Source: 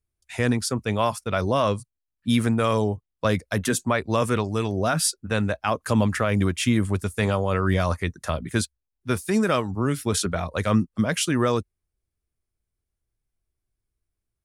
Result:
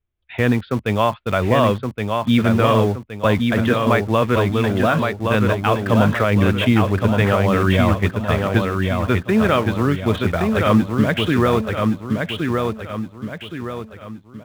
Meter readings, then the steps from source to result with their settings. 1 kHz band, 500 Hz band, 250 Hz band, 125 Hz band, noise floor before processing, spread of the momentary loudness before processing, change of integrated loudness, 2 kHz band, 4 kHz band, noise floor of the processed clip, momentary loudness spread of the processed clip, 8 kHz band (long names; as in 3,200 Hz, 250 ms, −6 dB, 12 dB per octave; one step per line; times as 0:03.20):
+7.0 dB, +7.0 dB, +7.0 dB, +7.0 dB, −83 dBFS, 6 LU, +6.0 dB, +7.0 dB, +4.0 dB, −45 dBFS, 12 LU, −10.0 dB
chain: Butterworth low-pass 3,600 Hz 72 dB per octave
in parallel at −11 dB: bit reduction 5 bits
on the sum: repeating echo 1,119 ms, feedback 41%, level −4 dB
level +3 dB